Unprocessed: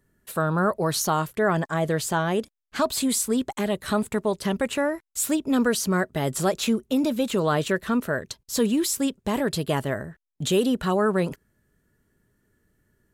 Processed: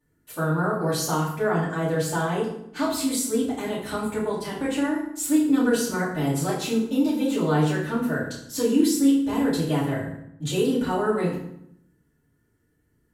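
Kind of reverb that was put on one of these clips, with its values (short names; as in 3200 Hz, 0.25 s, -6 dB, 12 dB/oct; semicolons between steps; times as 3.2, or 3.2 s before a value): FDN reverb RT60 0.73 s, low-frequency decay 1.4×, high-frequency decay 0.75×, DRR -10 dB; gain -12 dB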